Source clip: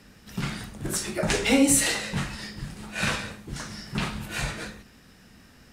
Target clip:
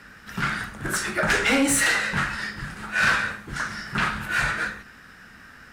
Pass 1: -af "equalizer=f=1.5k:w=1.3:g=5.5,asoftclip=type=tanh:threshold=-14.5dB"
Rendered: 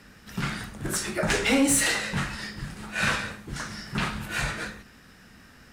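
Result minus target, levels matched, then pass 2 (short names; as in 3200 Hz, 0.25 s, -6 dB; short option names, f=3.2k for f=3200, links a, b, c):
2000 Hz band -3.5 dB
-af "equalizer=f=1.5k:w=1.3:g=16,asoftclip=type=tanh:threshold=-14.5dB"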